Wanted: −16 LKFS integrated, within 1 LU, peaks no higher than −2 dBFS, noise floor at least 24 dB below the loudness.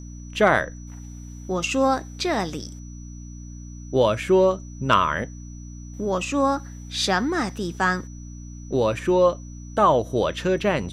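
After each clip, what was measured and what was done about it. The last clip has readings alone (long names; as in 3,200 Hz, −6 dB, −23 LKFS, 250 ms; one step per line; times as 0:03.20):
mains hum 60 Hz; hum harmonics up to 300 Hz; level of the hum −35 dBFS; interfering tone 5,900 Hz; level of the tone −49 dBFS; integrated loudness −22.5 LKFS; sample peak −5.5 dBFS; target loudness −16.0 LKFS
→ hum removal 60 Hz, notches 5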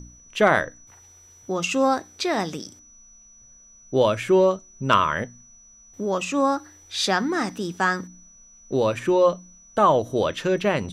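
mains hum none found; interfering tone 5,900 Hz; level of the tone −49 dBFS
→ notch filter 5,900 Hz, Q 30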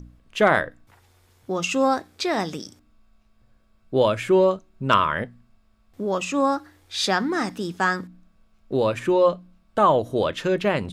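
interfering tone none found; integrated loudness −23.0 LKFS; sample peak −5.0 dBFS; target loudness −16.0 LKFS
→ level +7 dB
brickwall limiter −2 dBFS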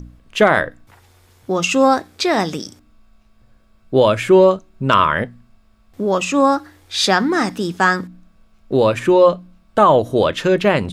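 integrated loudness −16.5 LKFS; sample peak −2.0 dBFS; background noise floor −54 dBFS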